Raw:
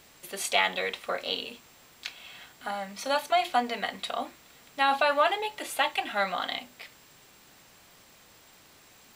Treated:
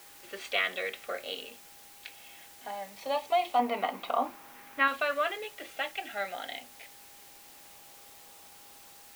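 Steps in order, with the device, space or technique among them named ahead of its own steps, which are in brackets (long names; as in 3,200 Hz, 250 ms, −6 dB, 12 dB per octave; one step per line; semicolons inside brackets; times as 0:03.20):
shortwave radio (band-pass filter 330–2,800 Hz; amplitude tremolo 0.25 Hz, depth 35%; auto-filter notch saw up 0.22 Hz 740–2,000 Hz; steady tone 810 Hz −61 dBFS; white noise bed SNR 17 dB)
0:03.59–0:04.88: octave-band graphic EQ 250/1,000/2,000/4,000/8,000 Hz +8/+7/+5/−4/−5 dB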